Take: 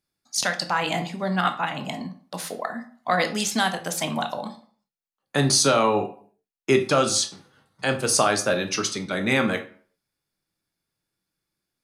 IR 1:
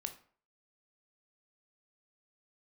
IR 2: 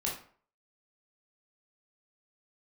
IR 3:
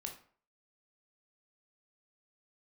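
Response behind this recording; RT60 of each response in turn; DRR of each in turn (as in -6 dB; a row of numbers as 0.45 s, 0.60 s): 1; 0.50 s, 0.50 s, 0.50 s; 6.5 dB, -4.0 dB, 2.0 dB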